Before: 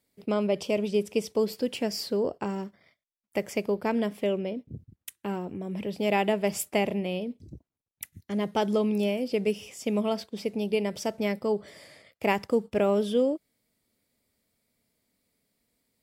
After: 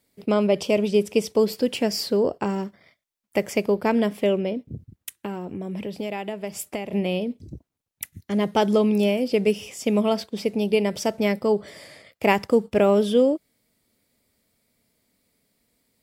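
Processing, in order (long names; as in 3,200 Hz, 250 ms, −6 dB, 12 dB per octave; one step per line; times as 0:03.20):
0:04.57–0:06.93: downward compressor 6 to 1, threshold −34 dBFS, peak gain reduction 13 dB
level +6 dB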